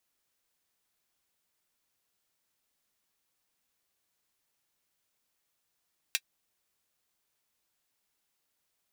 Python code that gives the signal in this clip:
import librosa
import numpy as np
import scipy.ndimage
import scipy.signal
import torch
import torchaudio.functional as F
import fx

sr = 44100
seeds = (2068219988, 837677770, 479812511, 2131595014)

y = fx.drum_hat(sr, length_s=0.24, from_hz=2300.0, decay_s=0.06)